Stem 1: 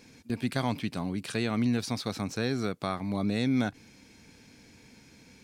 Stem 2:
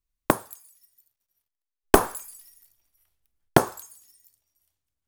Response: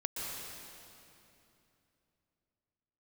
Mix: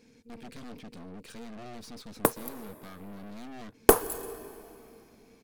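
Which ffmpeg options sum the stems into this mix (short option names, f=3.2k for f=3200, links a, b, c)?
-filter_complex "[0:a]equalizer=f=230:t=o:w=0.45:g=8.5,aeval=exprs='0.0794*(abs(mod(val(0)/0.0794+3,4)-2)-1)':c=same,aeval=exprs='(tanh(79.4*val(0)+0.7)-tanh(0.7))/79.4':c=same,volume=-5.5dB[a];[1:a]equalizer=f=13k:w=0.77:g=10.5,aeval=exprs='sgn(val(0))*max(abs(val(0))-0.0168,0)':c=same,adelay=1950,volume=-6dB,asplit=2[b][c];[c]volume=-16.5dB[d];[2:a]atrim=start_sample=2205[e];[d][e]afir=irnorm=-1:irlink=0[f];[a][b][f]amix=inputs=3:normalize=0,equalizer=f=460:t=o:w=0.2:g=11.5"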